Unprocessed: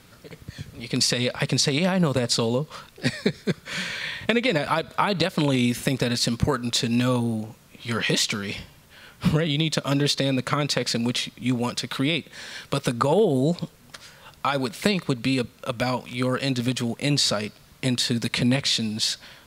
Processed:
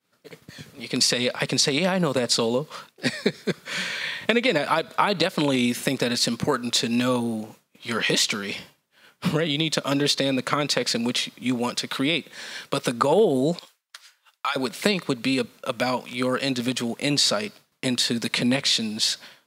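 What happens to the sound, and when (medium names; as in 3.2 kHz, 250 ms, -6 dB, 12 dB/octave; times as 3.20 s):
13.59–14.56 s: high-pass 1.2 kHz
whole clip: expander -39 dBFS; high-pass 210 Hz 12 dB/octave; trim +1.5 dB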